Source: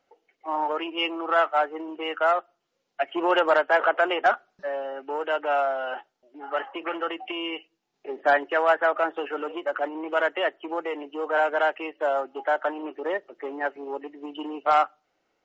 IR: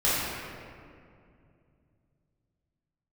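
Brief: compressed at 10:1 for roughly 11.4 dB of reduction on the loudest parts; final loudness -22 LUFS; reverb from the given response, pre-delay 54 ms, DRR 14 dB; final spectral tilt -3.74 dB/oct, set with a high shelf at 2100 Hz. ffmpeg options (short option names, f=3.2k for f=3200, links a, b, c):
-filter_complex "[0:a]highshelf=f=2.1k:g=8,acompressor=threshold=-26dB:ratio=10,asplit=2[a][b];[1:a]atrim=start_sample=2205,adelay=54[c];[b][c]afir=irnorm=-1:irlink=0,volume=-28.5dB[d];[a][d]amix=inputs=2:normalize=0,volume=9.5dB"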